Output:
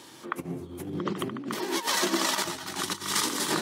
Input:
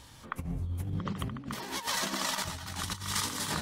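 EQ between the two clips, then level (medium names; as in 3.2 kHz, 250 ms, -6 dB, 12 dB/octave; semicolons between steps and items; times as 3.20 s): Bessel high-pass 220 Hz, order 4; peaking EQ 350 Hz +14 dB 0.44 oct; +5.0 dB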